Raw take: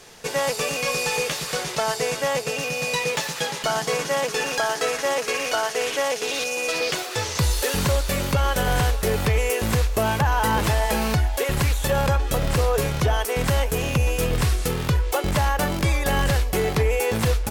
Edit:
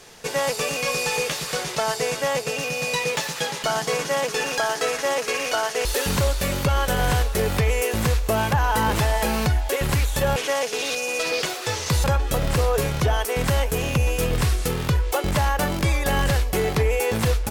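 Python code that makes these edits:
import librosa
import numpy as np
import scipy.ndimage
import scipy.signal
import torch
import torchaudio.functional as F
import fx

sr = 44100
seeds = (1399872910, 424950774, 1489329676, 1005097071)

y = fx.edit(x, sr, fx.move(start_s=5.85, length_s=1.68, to_s=12.04), tone=tone)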